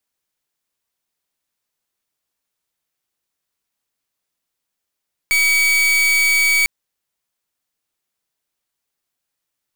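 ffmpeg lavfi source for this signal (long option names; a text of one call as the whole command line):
ffmpeg -f lavfi -i "aevalsrc='0.178*(2*lt(mod(2270*t,1),0.41)-1)':duration=1.35:sample_rate=44100" out.wav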